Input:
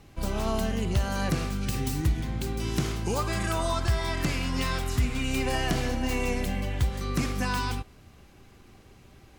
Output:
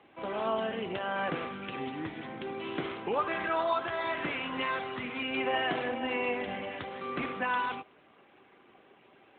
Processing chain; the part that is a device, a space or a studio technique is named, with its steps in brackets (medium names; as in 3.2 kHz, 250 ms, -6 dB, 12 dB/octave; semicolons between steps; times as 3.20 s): telephone (band-pass 390–3600 Hz; trim +2 dB; AMR-NB 12.2 kbps 8 kHz)